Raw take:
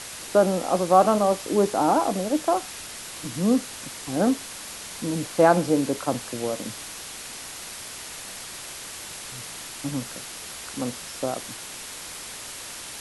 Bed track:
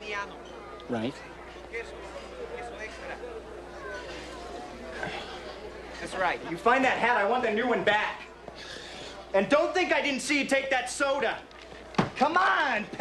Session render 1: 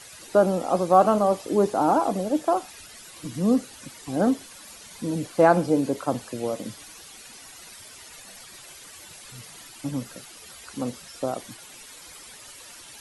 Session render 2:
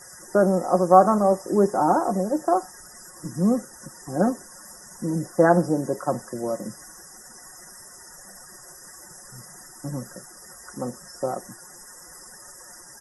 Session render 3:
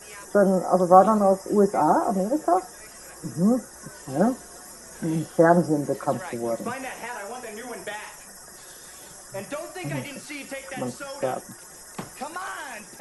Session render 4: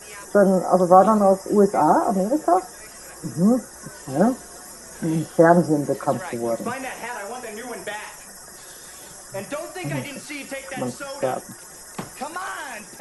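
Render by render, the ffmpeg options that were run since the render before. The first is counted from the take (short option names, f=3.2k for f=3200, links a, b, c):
-af "afftdn=nr=12:nf=-38"
-af "afftfilt=real='re*(1-between(b*sr/4096,2000,4900))':imag='im*(1-between(b*sr/4096,2000,4900))':win_size=4096:overlap=0.75,aecho=1:1:5.5:0.57"
-filter_complex "[1:a]volume=-10.5dB[a];[0:a][a]amix=inputs=2:normalize=0"
-af "volume=3dB,alimiter=limit=-1dB:level=0:latency=1"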